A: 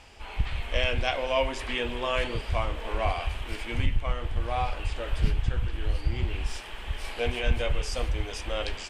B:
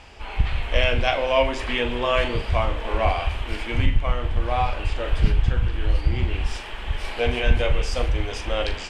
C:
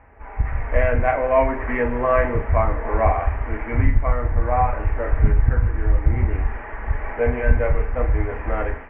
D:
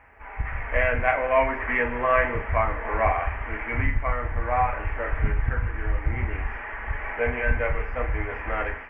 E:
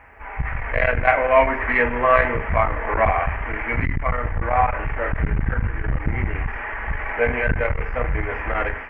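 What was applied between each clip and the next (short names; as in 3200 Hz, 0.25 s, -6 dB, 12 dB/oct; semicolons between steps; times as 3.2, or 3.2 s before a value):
high shelf 7500 Hz -11.5 dB; on a send: flutter echo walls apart 7 m, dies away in 0.23 s; on the sum: gain +6 dB
elliptic low-pass 2000 Hz, stop band 50 dB; notch comb 180 Hz; AGC gain up to 7.5 dB; gain -1.5 dB
tilt shelf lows -8 dB, about 1200 Hz
core saturation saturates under 260 Hz; gain +6 dB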